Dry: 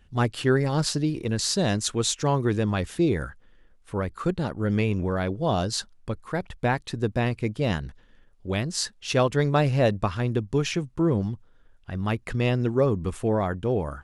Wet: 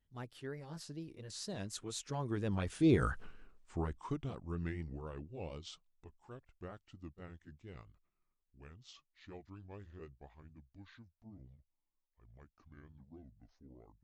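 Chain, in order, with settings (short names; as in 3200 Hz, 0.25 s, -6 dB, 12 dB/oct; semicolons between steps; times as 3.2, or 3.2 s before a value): gliding pitch shift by -8.5 st starting unshifted; Doppler pass-by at 3.23, 20 m/s, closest 1.7 m; vibrato 4.2 Hz 73 cents; gain +8.5 dB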